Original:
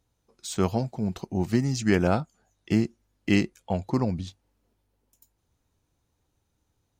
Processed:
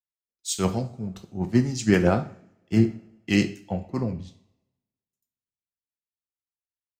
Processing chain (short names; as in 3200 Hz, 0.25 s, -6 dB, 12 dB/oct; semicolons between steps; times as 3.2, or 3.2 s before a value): rotary speaker horn 7.5 Hz; two-slope reverb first 0.56 s, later 3.3 s, from -19 dB, DRR 6 dB; three-band expander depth 100%